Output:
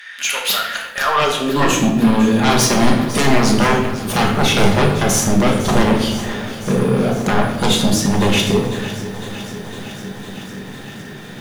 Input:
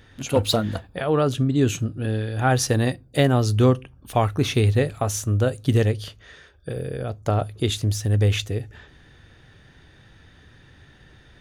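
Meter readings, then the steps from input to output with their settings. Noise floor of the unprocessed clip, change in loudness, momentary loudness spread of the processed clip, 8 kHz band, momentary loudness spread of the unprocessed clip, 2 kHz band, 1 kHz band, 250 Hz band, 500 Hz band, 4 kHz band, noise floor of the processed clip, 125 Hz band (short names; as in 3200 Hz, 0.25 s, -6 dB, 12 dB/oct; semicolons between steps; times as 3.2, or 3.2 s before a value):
-53 dBFS, +6.5 dB, 16 LU, +10.5 dB, 11 LU, +12.0 dB, +10.5 dB, +10.0 dB, +5.5 dB, +10.5 dB, -33 dBFS, +0.5 dB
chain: in parallel at -1 dB: compressor, threshold -30 dBFS, peak gain reduction 16 dB; on the sum: high-pass sweep 1800 Hz -> 200 Hz, 0.85–1.89; sine folder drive 15 dB, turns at -2 dBFS; shoebox room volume 380 m³, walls mixed, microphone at 1.3 m; lo-fi delay 0.505 s, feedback 80%, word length 4-bit, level -14.5 dB; gain -11.5 dB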